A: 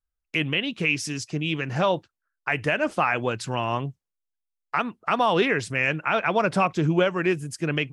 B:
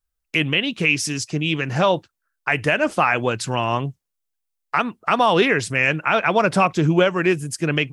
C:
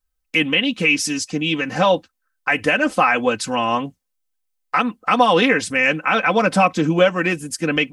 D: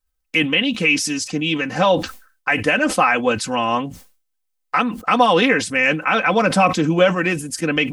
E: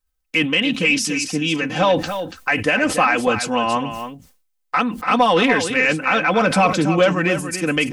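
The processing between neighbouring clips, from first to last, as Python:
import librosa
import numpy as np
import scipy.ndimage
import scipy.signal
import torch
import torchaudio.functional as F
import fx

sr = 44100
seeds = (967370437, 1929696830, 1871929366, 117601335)

y1 = fx.high_shelf(x, sr, hz=6400.0, db=5.5)
y1 = F.gain(torch.from_numpy(y1), 4.5).numpy()
y2 = y1 + 0.8 * np.pad(y1, (int(3.9 * sr / 1000.0), 0))[:len(y1)]
y3 = fx.sustainer(y2, sr, db_per_s=120.0)
y4 = 10.0 ** (-4.0 / 20.0) * np.tanh(y3 / 10.0 ** (-4.0 / 20.0))
y4 = y4 + 10.0 ** (-9.5 / 20.0) * np.pad(y4, (int(285 * sr / 1000.0), 0))[:len(y4)]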